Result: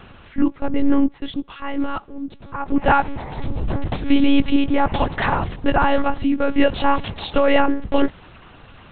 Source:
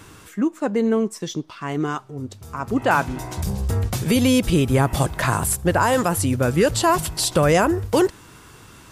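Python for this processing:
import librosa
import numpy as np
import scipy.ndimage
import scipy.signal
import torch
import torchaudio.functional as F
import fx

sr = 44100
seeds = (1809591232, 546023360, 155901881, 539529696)

y = fx.peak_eq(x, sr, hz=120.0, db=-11.5, octaves=0.3)
y = fx.small_body(y, sr, hz=(210.0, 810.0, 2000.0, 2800.0), ring_ms=45, db=7)
y = fx.lpc_monotone(y, sr, seeds[0], pitch_hz=280.0, order=8)
y = F.gain(torch.from_numpy(y), 1.5).numpy()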